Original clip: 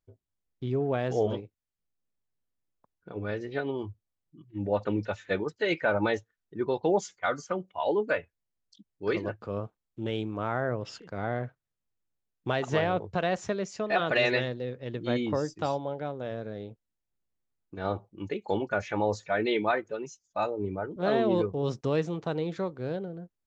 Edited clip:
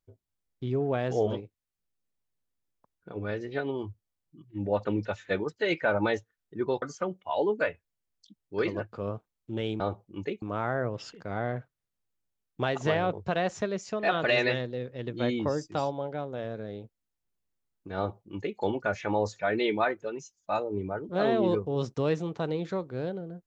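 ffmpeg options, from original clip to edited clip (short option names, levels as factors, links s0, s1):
-filter_complex "[0:a]asplit=4[s0][s1][s2][s3];[s0]atrim=end=6.822[s4];[s1]atrim=start=7.308:end=10.292[s5];[s2]atrim=start=17.838:end=18.462[s6];[s3]atrim=start=10.288[s7];[s4][s5]acrossfade=d=0.004:c1=hsin:c2=hsin[s8];[s8][s6]acrossfade=d=0.004:c1=hsin:c2=hsin[s9];[s9][s7]acrossfade=d=0.004:c1=hsin:c2=hsin"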